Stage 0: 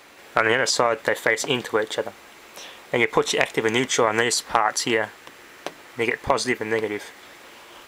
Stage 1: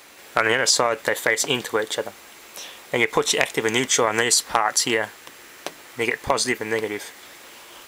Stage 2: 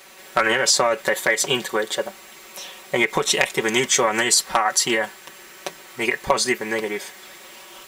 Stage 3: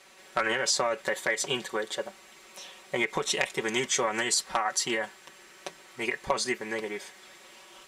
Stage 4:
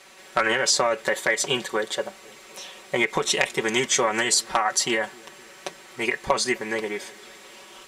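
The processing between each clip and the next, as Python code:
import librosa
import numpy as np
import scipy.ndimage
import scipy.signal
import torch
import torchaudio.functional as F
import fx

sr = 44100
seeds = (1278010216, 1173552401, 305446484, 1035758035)

y1 = fx.high_shelf(x, sr, hz=4500.0, db=9.5)
y1 = y1 * librosa.db_to_amplitude(-1.0)
y2 = y1 + 0.81 * np.pad(y1, (int(5.3 * sr / 1000.0), 0))[:len(y1)]
y2 = y2 * librosa.db_to_amplitude(-1.0)
y3 = scipy.signal.sosfilt(scipy.signal.butter(2, 10000.0, 'lowpass', fs=sr, output='sos'), y2)
y3 = y3 * librosa.db_to_amplitude(-8.5)
y4 = fx.echo_wet_lowpass(y3, sr, ms=257, feedback_pct=65, hz=610.0, wet_db=-22.5)
y4 = y4 * librosa.db_to_amplitude(5.5)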